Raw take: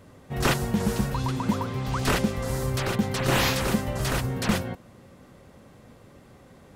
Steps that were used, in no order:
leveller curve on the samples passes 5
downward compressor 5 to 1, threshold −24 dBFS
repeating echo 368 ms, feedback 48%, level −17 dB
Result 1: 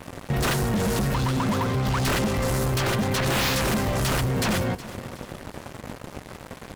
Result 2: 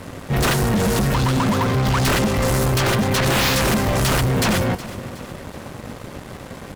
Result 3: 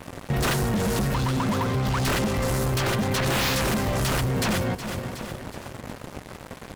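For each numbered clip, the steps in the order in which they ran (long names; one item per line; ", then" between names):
leveller curve on the samples, then downward compressor, then repeating echo
downward compressor, then leveller curve on the samples, then repeating echo
leveller curve on the samples, then repeating echo, then downward compressor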